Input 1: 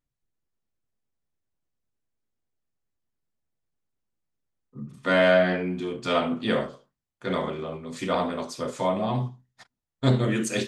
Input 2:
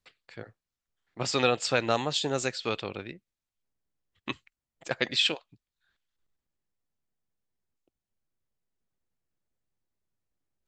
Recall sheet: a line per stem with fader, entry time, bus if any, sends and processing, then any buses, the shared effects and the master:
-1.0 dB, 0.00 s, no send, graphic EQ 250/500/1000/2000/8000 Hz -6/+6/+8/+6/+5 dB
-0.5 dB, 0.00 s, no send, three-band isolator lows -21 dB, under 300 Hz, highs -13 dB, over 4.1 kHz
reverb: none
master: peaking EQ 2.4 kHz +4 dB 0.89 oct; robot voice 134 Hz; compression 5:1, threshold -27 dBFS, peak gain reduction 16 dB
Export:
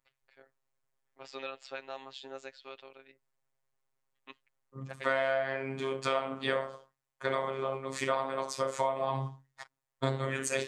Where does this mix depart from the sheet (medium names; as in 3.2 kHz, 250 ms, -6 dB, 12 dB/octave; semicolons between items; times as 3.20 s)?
stem 2 -0.5 dB -> -12.0 dB; master: missing peaking EQ 2.4 kHz +4 dB 0.89 oct